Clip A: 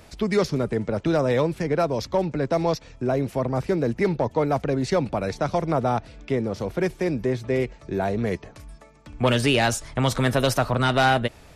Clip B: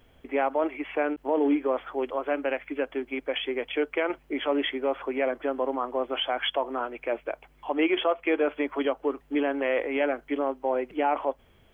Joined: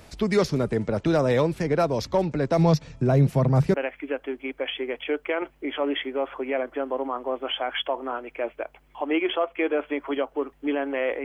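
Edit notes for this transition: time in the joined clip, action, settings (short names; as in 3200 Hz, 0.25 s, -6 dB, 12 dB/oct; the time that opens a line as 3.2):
clip A
2.58–3.74 bell 150 Hz +13 dB 0.59 oct
3.74 switch to clip B from 2.42 s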